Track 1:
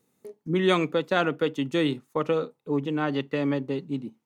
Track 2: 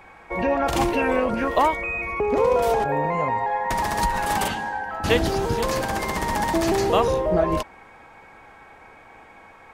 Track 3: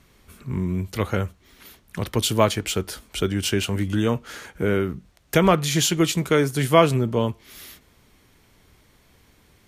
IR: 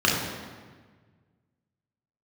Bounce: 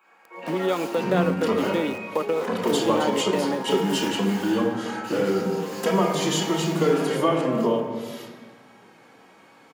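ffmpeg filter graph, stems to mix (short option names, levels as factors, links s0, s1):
-filter_complex "[0:a]volume=1.33[s0];[1:a]aemphasis=mode=production:type=riaa,aeval=exprs='0.112*(abs(mod(val(0)/0.112+3,4)-2)-1)':c=same,volume=0.1,asplit=2[s1][s2];[s2]volume=0.335[s3];[2:a]lowpass=11000,acompressor=threshold=0.0708:ratio=6,asplit=2[s4][s5];[s5]adelay=2.8,afreqshift=-1.8[s6];[s4][s6]amix=inputs=2:normalize=1,adelay=500,volume=0.841,asplit=2[s7][s8];[s8]volume=0.2[s9];[s0][s1]amix=inputs=2:normalize=0,aeval=exprs='val(0)*gte(abs(val(0)),0.0299)':c=same,acompressor=threshold=0.0355:ratio=3,volume=1[s10];[3:a]atrim=start_sample=2205[s11];[s3][s9]amix=inputs=2:normalize=0[s12];[s12][s11]afir=irnorm=-1:irlink=0[s13];[s7][s10][s13]amix=inputs=3:normalize=0,highpass=f=170:w=0.5412,highpass=f=170:w=1.3066,equalizer=f=660:w=0.69:g=7.5"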